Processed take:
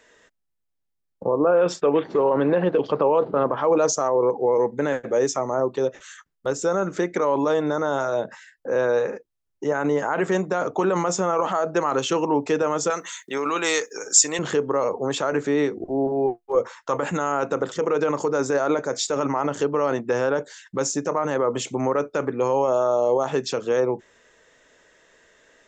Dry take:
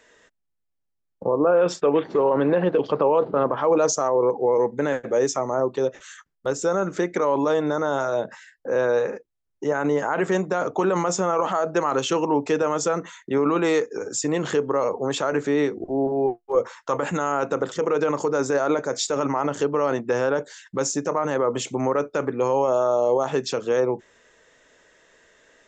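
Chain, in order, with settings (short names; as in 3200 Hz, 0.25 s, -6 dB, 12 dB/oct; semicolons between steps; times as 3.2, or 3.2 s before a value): 12.9–14.39 tilt +4.5 dB/oct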